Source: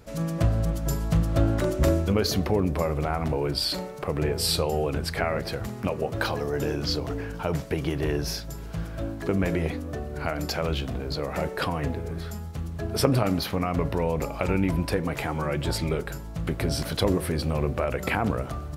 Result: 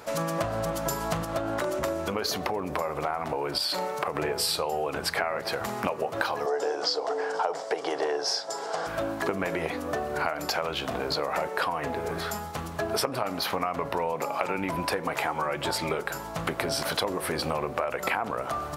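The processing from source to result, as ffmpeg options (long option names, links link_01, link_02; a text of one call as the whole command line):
ffmpeg -i in.wav -filter_complex "[0:a]asettb=1/sr,asplit=3[link_01][link_02][link_03];[link_01]atrim=end=1.244[link_04];[link_02]atrim=start=1.24:end=4.15,asetpts=PTS-STARTPTS,afade=type=in:duration=0.004:curve=qsin,afade=type=out:start_time=2.906:duration=0.004:curve=qsin,acompressor=threshold=-28dB:ratio=2.5:attack=3.2:release=140:knee=1:detection=peak[link_05];[link_03]atrim=start=4.146[link_06];[link_04][link_05]acrossfade=duration=0.004:curve1=hsin:curve2=qsin[link_07];[link_07][link_06]acrossfade=duration=0.004:curve1=qsin:curve2=hsin,asettb=1/sr,asplit=3[link_08][link_09][link_10];[link_08]atrim=end=6.464[link_11];[link_09]atrim=start=6.46:end=8.87,asetpts=PTS-STARTPTS,afade=type=in:duration=0.004:curve=qsin,afade=type=out:start_time=2.406:duration=0.004:curve=qsin,highpass=380,equalizer=frequency=460:width_type=q:width=4:gain=9,equalizer=frequency=750:width_type=q:width=4:gain=9,equalizer=frequency=2500:width_type=q:width=4:gain=-8,equalizer=frequency=5100:width_type=q:width=4:gain=7,equalizer=frequency=7800:width_type=q:width=4:gain=4,lowpass=frequency=8700:width=0.5412,lowpass=frequency=8700:width=1.3066[link_12];[link_10]atrim=start=8.866[link_13];[link_11][link_12]acrossfade=duration=0.004:curve1=hsin:curve2=qsin[link_14];[link_14][link_13]acrossfade=duration=0.004:curve1=qsin:curve2=hsin,asettb=1/sr,asplit=3[link_15][link_16][link_17];[link_15]atrim=end=14.134[link_18];[link_16]atrim=start=14.13:end=14.58,asetpts=PTS-STARTPTS,afade=type=in:duration=0.004:curve=qsin,afade=type=out:start_time=0.446:duration=0.004:curve=qsin,highpass=frequency=110:width=0.5412,highpass=frequency=110:width=1.3066[link_19];[link_17]atrim=start=14.576[link_20];[link_18][link_19]acrossfade=duration=0.004:curve1=hsin:curve2=qsin[link_21];[link_21][link_20]acrossfade=duration=0.004:curve1=qsin:curve2=hsin,highpass=frequency=590:poles=1,equalizer=frequency=930:width=0.93:gain=7.5,acompressor=threshold=-34dB:ratio=6,volume=8.5dB" out.wav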